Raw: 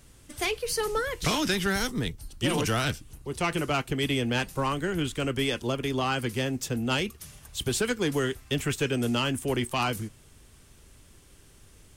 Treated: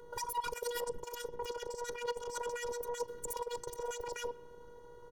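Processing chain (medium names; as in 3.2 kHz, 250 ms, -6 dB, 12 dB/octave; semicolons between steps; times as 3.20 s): local Wiener filter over 41 samples; high-pass 47 Hz 24 dB/octave; peaking EQ 8.4 kHz -12.5 dB 0.34 oct; band-stop 1.6 kHz, Q 9; comb 6.5 ms, depth 86%; compressor with a negative ratio -33 dBFS, ratio -0.5; peak limiter -26.5 dBFS, peak gain reduction 10.5 dB; robot voice 205 Hz; band-passed feedback delay 97 ms, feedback 75%, band-pass 1.1 kHz, level -21 dB; speed mistake 33 rpm record played at 78 rpm; trim +1 dB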